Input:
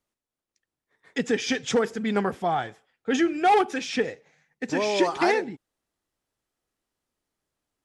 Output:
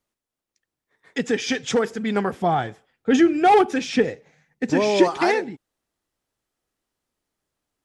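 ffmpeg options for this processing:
-filter_complex "[0:a]asettb=1/sr,asplit=3[a][b][c];[a]atrim=end=2.394[d];[b]atrim=start=2.39:end=5.08,asetpts=PTS-STARTPTS,afade=t=in:d=0.004:c=qsin,afade=t=out:st=2.686:d=0.004:c=qsin,lowshelf=f=420:g=8[e];[c]atrim=start=5.076[f];[d][e]acrossfade=d=0.004:c1=hsin:c2=qsin[g];[g][f]acrossfade=d=0.004:c1=qsin:c2=hsin,volume=2dB"

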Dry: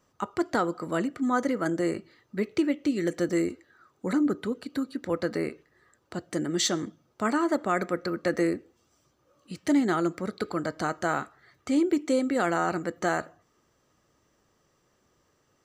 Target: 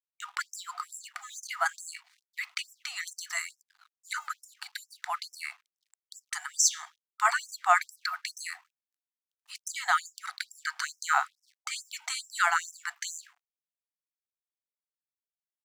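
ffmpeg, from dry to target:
-af "aeval=exprs='sgn(val(0))*max(abs(val(0))-0.00158,0)':c=same,afftfilt=real='re*gte(b*sr/1024,660*pow(5300/660,0.5+0.5*sin(2*PI*2.3*pts/sr)))':imag='im*gte(b*sr/1024,660*pow(5300/660,0.5+0.5*sin(2*PI*2.3*pts/sr)))':win_size=1024:overlap=0.75,volume=7dB"

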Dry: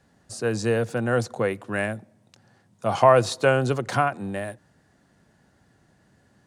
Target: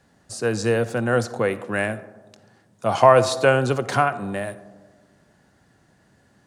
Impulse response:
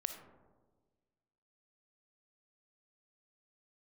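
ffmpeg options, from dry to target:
-filter_complex "[0:a]asplit=2[a][b];[1:a]atrim=start_sample=2205,lowshelf=f=200:g=-8[c];[b][c]afir=irnorm=-1:irlink=0,volume=-2dB[d];[a][d]amix=inputs=2:normalize=0,volume=-1.5dB"

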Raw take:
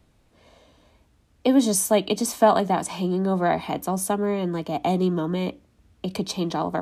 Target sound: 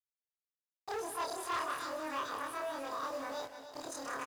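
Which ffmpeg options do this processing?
-af "afftfilt=real='re':imag='-im':win_size=4096:overlap=0.75,aresample=16000,asoftclip=type=hard:threshold=-21.5dB,aresample=44100,alimiter=level_in=3dB:limit=-24dB:level=0:latency=1:release=36,volume=-3dB,highpass=f=42:w=0.5412,highpass=f=42:w=1.3066,equalizer=f=170:w=0.83:g=-10,bandreject=f=50:t=h:w=6,bandreject=f=100:t=h:w=6,bandreject=f=150:t=h:w=6,bandreject=f=200:t=h:w=6,bandreject=f=250:t=h:w=6,bandreject=f=300:t=h:w=6,bandreject=f=350:t=h:w=6,acrusher=bits=7:mix=0:aa=0.000001,highshelf=f=5.6k:g=-9,asetrate=70560,aresample=44100,aecho=1:1:183|293:0.282|0.299,volume=-2.5dB"

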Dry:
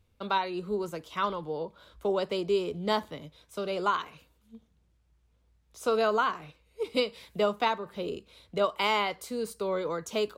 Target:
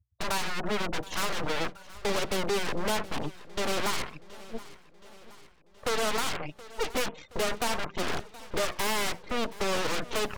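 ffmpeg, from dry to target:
-filter_complex "[0:a]afftfilt=real='re*gte(hypot(re,im),0.00708)':imag='im*gte(hypot(re,im),0.00708)':win_size=1024:overlap=0.75,bandreject=f=60:t=h:w=6,bandreject=f=120:t=h:w=6,bandreject=f=180:t=h:w=6,acrossover=split=130|530|3000[a][b][c][d];[a]acompressor=threshold=-56dB:ratio=4[e];[b]acompressor=threshold=-35dB:ratio=4[f];[c]acompressor=threshold=-34dB:ratio=4[g];[d]acompressor=threshold=-52dB:ratio=4[h];[e][f][g][h]amix=inputs=4:normalize=0,aresample=8000,asoftclip=type=tanh:threshold=-29.5dB,aresample=44100,aeval=exprs='0.0447*(cos(1*acos(clip(val(0)/0.0447,-1,1)))-cos(1*PI/2))+0.00282*(cos(3*acos(clip(val(0)/0.0447,-1,1)))-cos(3*PI/2))+0.00398*(cos(6*acos(clip(val(0)/0.0447,-1,1)))-cos(6*PI/2))+0.02*(cos(8*acos(clip(val(0)/0.0447,-1,1)))-cos(8*PI/2))':c=same,aeval=exprs='0.0282*(abs(mod(val(0)/0.0282+3,4)-2)-1)':c=same,aecho=1:1:723|1446|2169|2892|3615:0.112|0.0628|0.0352|0.0197|0.011,volume=8.5dB"

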